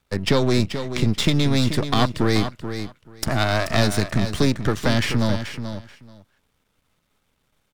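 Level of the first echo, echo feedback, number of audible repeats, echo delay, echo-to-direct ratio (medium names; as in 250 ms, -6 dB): -9.5 dB, 16%, 2, 433 ms, -9.5 dB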